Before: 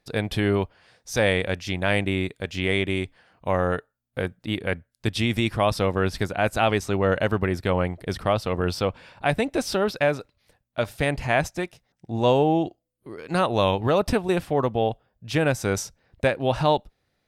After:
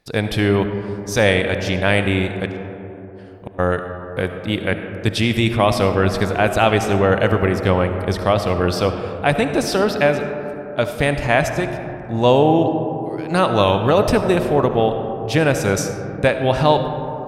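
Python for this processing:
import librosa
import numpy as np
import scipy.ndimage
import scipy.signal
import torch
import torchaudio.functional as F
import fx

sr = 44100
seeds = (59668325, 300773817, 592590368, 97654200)

y = fx.gate_flip(x, sr, shuts_db=-21.0, range_db=-41, at=(2.5, 3.58), fade=0.02)
y = fx.rev_freeverb(y, sr, rt60_s=3.7, hf_ratio=0.25, predelay_ms=30, drr_db=7.0)
y = y * librosa.db_to_amplitude(5.5)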